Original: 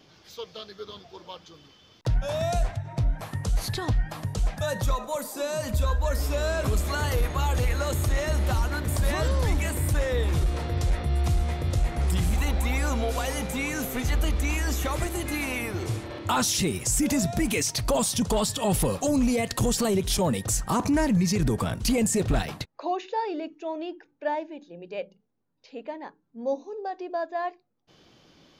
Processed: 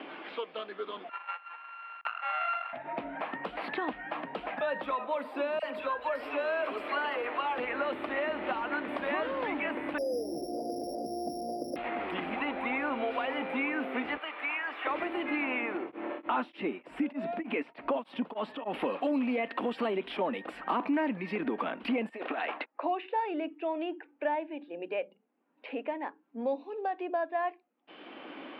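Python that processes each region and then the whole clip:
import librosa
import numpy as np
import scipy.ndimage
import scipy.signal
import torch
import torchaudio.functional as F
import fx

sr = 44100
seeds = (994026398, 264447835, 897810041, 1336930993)

y = fx.chain(x, sr, fx.sample_sort(block=32),
    fx.highpass(hz=900.0, slope=24),
    fx.air_absorb(metres=160.0), at=(1.09, 2.73))
y = fx.chain(y, sr, fx.bass_treble(bass_db=-13, treble_db=6),
    fx.notch(hz=3600.0, q=16.0),
    fx.dispersion(late='lows', ms=44.0, hz=1200.0), at=(5.59, 7.58))
y = fx.chain(y, sr, fx.ellip_lowpass(hz=690.0, order=4, stop_db=40),
    fx.resample_bad(factor=8, down='none', up='zero_stuff'), at=(9.98, 11.76))
y = fx.chain(y, sr, fx.highpass(hz=1100.0, slope=12),
    fx.tilt_eq(slope=-1.5), at=(14.17, 14.87))
y = fx.chain(y, sr, fx.high_shelf(hz=2300.0, db=-10.5),
    fx.tremolo_abs(hz=3.3), at=(15.77, 18.74))
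y = fx.chain(y, sr, fx.highpass(hz=450.0, slope=12),
    fx.over_compress(threshold_db=-34.0, ratio=-1.0), at=(22.09, 22.71))
y = scipy.signal.sosfilt(scipy.signal.ellip(3, 1.0, 40, [270.0, 2700.0], 'bandpass', fs=sr, output='sos'), y)
y = fx.peak_eq(y, sr, hz=410.0, db=-4.0, octaves=0.79)
y = fx.band_squash(y, sr, depth_pct=70)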